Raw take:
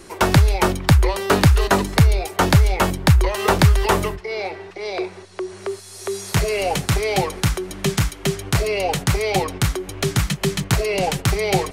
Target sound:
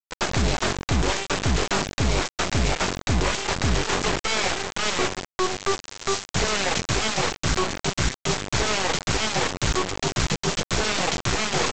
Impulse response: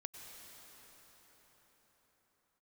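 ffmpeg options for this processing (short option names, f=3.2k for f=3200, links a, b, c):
-filter_complex "[0:a]asplit=2[a][b];[b]adelay=113,lowpass=f=990:p=1,volume=-24dB,asplit=2[c][d];[d]adelay=113,lowpass=f=990:p=1,volume=0.28[e];[a][c][e]amix=inputs=3:normalize=0,areverse,acompressor=threshold=-26dB:ratio=20,areverse,agate=range=-33dB:threshold=-41dB:ratio=3:detection=peak,aeval=exprs='0.112*(cos(1*acos(clip(val(0)/0.112,-1,1)))-cos(1*PI/2))+0.00224*(cos(3*acos(clip(val(0)/0.112,-1,1)))-cos(3*PI/2))+0.0158*(cos(6*acos(clip(val(0)/0.112,-1,1)))-cos(6*PI/2))+0.0501*(cos(7*acos(clip(val(0)/0.112,-1,1)))-cos(7*PI/2))':c=same,aresample=16000,acrusher=bits=4:mix=0:aa=0.000001,aresample=44100,acontrast=32,volume=-1.5dB"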